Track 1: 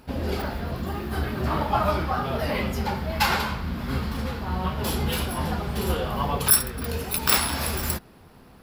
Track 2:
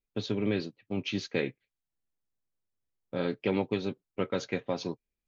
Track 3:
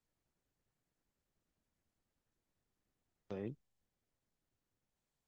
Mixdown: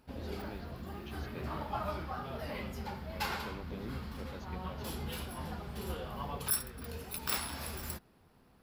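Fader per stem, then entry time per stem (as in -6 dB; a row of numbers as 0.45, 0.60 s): -14.0, -18.5, -3.0 dB; 0.00, 0.00, 0.40 s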